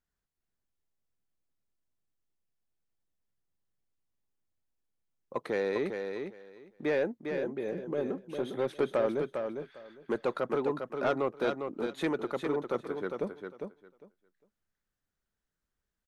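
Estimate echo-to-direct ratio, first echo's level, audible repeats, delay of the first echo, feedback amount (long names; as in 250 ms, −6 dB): −6.0 dB, −6.0 dB, 2, 403 ms, 17%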